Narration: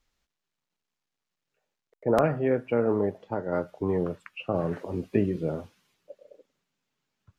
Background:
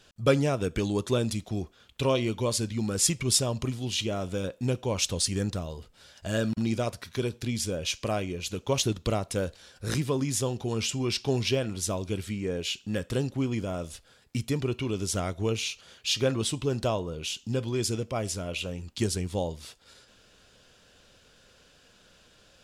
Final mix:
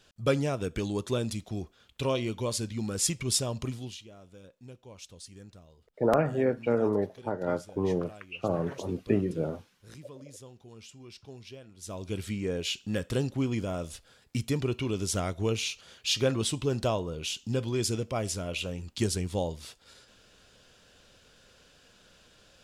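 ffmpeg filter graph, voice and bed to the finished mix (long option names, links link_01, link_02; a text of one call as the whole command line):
ffmpeg -i stem1.wav -i stem2.wav -filter_complex "[0:a]adelay=3950,volume=-1.5dB[link_01];[1:a]volume=16dB,afade=type=out:start_time=3.76:duration=0.24:silence=0.149624,afade=type=in:start_time=11.77:duration=0.49:silence=0.105925[link_02];[link_01][link_02]amix=inputs=2:normalize=0" out.wav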